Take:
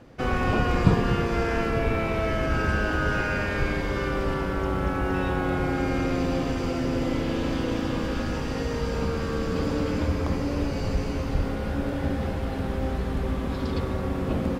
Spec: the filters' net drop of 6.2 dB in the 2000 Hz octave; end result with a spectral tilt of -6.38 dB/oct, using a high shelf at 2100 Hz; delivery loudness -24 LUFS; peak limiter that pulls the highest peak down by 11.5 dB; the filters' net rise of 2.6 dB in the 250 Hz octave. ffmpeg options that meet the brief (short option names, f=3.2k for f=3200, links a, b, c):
-af "equalizer=f=250:t=o:g=3.5,equalizer=f=2k:t=o:g=-4.5,highshelf=f=2.1k:g=-8,volume=3dB,alimiter=limit=-13dB:level=0:latency=1"